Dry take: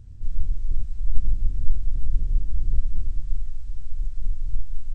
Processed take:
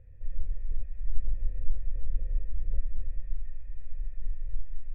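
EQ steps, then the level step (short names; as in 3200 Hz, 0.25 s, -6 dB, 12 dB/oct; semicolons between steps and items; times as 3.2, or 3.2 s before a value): vocal tract filter e; bell 230 Hz -10.5 dB 2 oct; +13.5 dB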